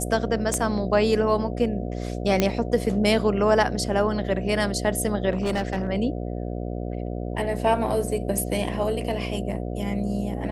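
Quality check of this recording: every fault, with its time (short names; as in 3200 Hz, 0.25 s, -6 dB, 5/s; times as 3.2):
buzz 60 Hz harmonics 12 -30 dBFS
0.54 pop -12 dBFS
2.4 pop -6 dBFS
5.3–5.88 clipped -20.5 dBFS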